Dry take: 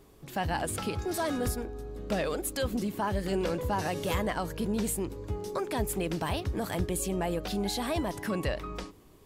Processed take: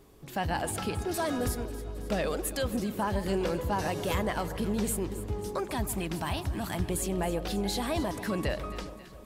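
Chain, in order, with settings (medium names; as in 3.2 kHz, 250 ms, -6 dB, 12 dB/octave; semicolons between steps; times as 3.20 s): 5.64–6.90 s: peaking EQ 470 Hz -15 dB 0.36 oct; echo whose repeats swap between lows and highs 135 ms, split 1.1 kHz, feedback 77%, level -12 dB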